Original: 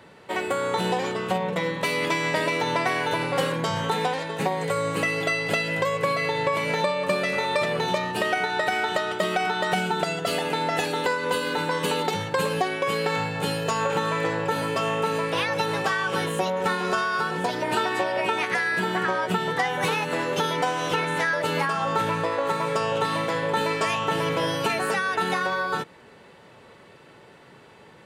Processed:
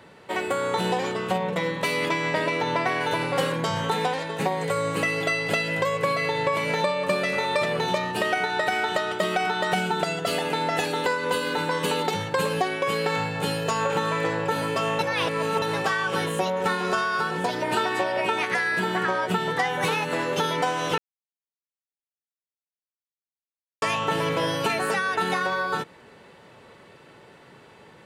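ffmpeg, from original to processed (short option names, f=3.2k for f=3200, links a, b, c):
-filter_complex "[0:a]asettb=1/sr,asplit=3[a][b][c];[a]atrim=end=2.094[d];[b]atrim=start=2.09:end=3.01,asetpts=PTS-STARTPTS,afade=t=in:d=0.004:c=qsin,afade=t=out:st=0.916:d=0.004:c=qsin,highshelf=f=6k:g=-10[e];[c]atrim=start=3.006[f];[d][e]acrossfade=d=0.004:c1=hsin:c2=qsin[g];[g][f]acrossfade=d=0.004:c1=qsin:c2=hsin,asplit=5[h][i][j][k][l];[h]atrim=end=14.992[m];[i]atrim=start=14.988:end=15.622,asetpts=PTS-STARTPTS,areverse[n];[j]atrim=start=15.618:end=20.98,asetpts=PTS-STARTPTS,afade=t=out:st=5.358:d=0.004:c=hsin[o];[k]atrim=start=20.98:end=23.82,asetpts=PTS-STARTPTS,volume=0[p];[l]atrim=start=23.82,asetpts=PTS-STARTPTS,afade=t=in:d=0.004:c=hsin[q];[m][n]acrossfade=d=0.004:c1=hsin:c2=hsin[r];[o][p][q]concat=n=3:v=0:a=1[s];[r][s]acrossfade=d=0.004:c1=hsin:c2=hsin"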